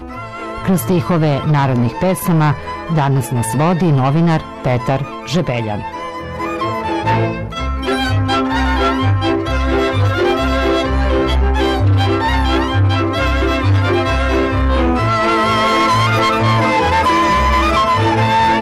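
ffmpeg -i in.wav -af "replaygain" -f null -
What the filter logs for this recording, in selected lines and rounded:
track_gain = -2.3 dB
track_peak = 0.253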